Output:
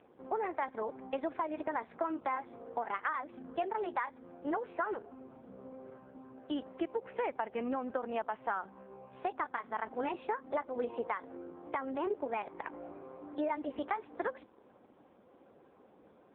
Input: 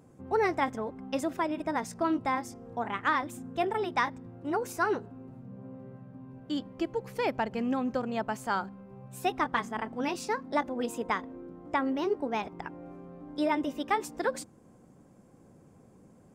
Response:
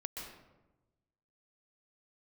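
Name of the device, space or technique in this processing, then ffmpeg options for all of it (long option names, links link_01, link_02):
voicemail: -af "highpass=420,lowpass=2700,acompressor=threshold=-35dB:ratio=12,volume=5dB" -ar 8000 -c:a libopencore_amrnb -b:a 5150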